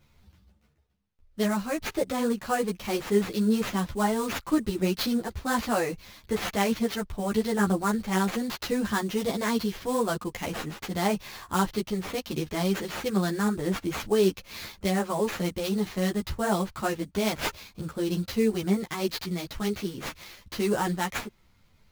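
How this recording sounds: aliases and images of a low sample rate 8.8 kHz, jitter 20%; a shimmering, thickened sound

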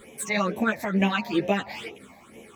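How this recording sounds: phasing stages 8, 2.2 Hz, lowest notch 390–1400 Hz; tremolo saw down 3 Hz, depth 35%; a shimmering, thickened sound

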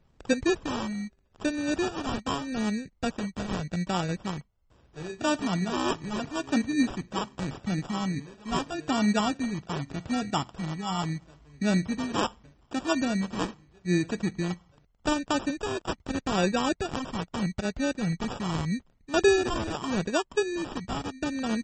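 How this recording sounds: phasing stages 2, 0.8 Hz, lowest notch 480–2700 Hz; aliases and images of a low sample rate 2.1 kHz, jitter 0%; MP3

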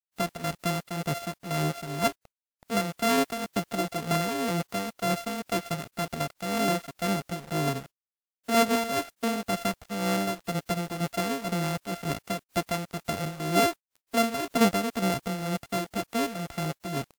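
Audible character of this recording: a buzz of ramps at a fixed pitch in blocks of 64 samples; tremolo triangle 2 Hz, depth 70%; a quantiser's noise floor 8-bit, dither none; WMA

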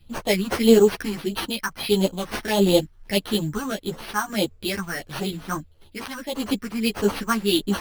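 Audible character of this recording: phasing stages 4, 1.6 Hz, lowest notch 500–2600 Hz; random-step tremolo; aliases and images of a low sample rate 7.3 kHz, jitter 0%; a shimmering, thickened sound

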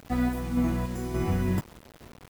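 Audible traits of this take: random-step tremolo; a quantiser's noise floor 8-bit, dither none

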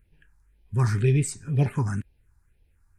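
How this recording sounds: phasing stages 4, 2 Hz, lowest notch 480–1300 Hz

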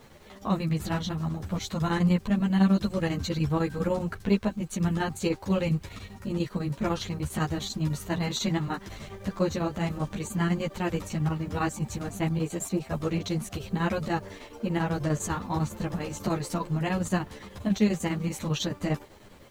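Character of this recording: chopped level 10 Hz, depth 60%, duty 75%; a quantiser's noise floor 10-bit, dither none; a shimmering, thickened sound

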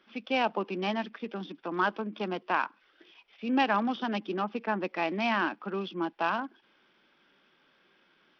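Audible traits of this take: SBC

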